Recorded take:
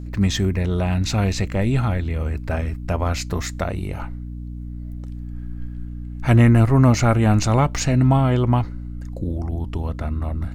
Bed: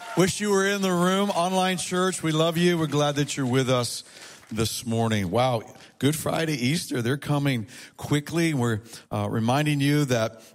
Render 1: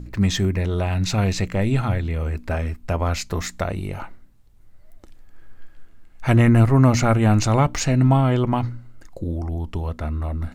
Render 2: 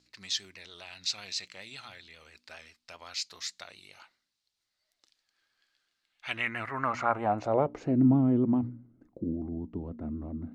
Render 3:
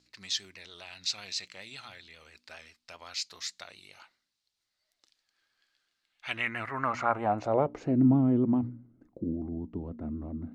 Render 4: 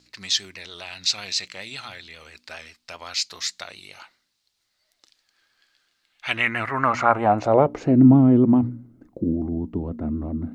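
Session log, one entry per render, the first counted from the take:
de-hum 60 Hz, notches 5
vibrato 7.5 Hz 54 cents; band-pass sweep 4500 Hz -> 260 Hz, 5.99–8.09
nothing audible
gain +9.5 dB

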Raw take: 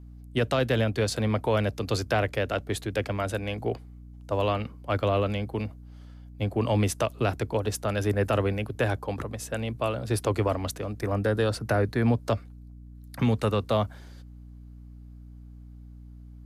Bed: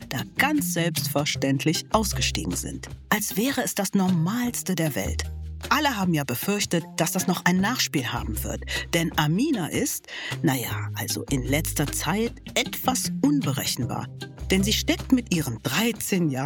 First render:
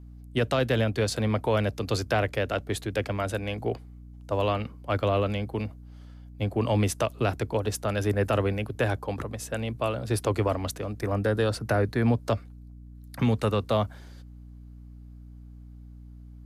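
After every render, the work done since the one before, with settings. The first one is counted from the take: nothing audible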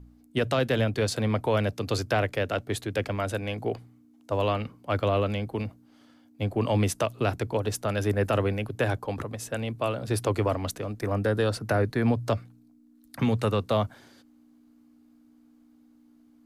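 de-hum 60 Hz, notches 3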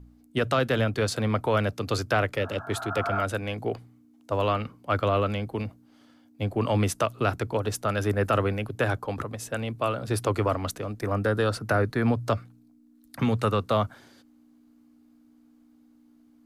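2.4–3.19 spectral repair 610–1700 Hz both; dynamic EQ 1300 Hz, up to +7 dB, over -47 dBFS, Q 3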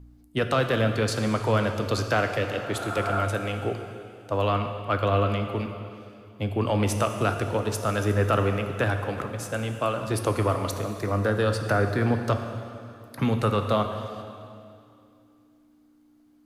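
plate-style reverb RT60 2.5 s, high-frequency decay 0.95×, DRR 5.5 dB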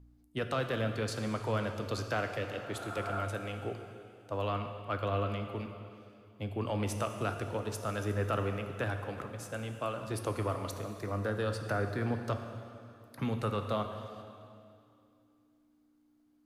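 gain -9.5 dB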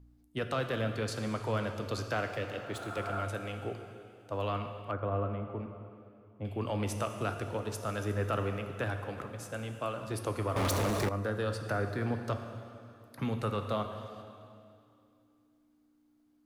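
2.29–3.22 median filter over 3 samples; 4.91–6.45 LPF 1300 Hz; 10.56–11.09 sample leveller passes 5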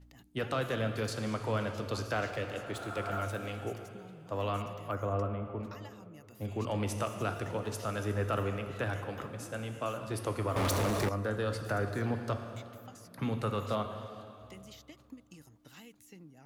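add bed -30 dB

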